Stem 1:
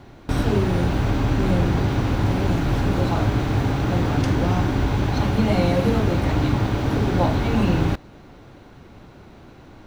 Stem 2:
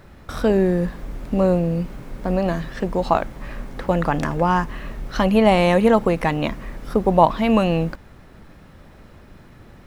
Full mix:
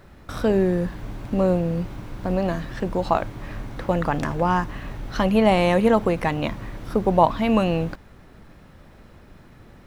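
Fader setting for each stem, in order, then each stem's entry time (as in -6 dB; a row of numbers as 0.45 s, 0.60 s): -17.5 dB, -2.5 dB; 0.00 s, 0.00 s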